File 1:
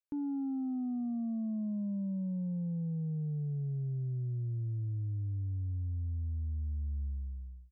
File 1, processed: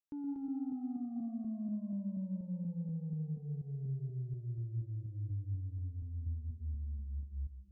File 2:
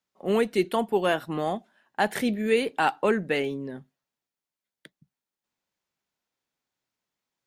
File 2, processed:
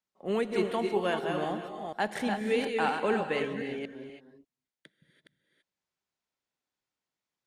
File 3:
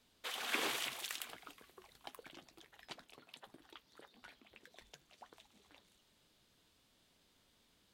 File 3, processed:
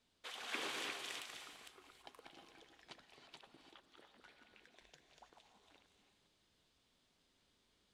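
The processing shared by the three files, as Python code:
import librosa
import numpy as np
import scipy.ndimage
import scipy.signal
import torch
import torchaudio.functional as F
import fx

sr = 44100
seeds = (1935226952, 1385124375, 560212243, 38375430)

y = fx.reverse_delay(x, sr, ms=241, wet_db=-5.0)
y = scipy.signal.sosfilt(scipy.signal.butter(2, 8900.0, 'lowpass', fs=sr, output='sos'), y)
y = fx.rev_gated(y, sr, seeds[0], gate_ms=360, shape='rising', drr_db=7.0)
y = F.gain(torch.from_numpy(y), -6.0).numpy()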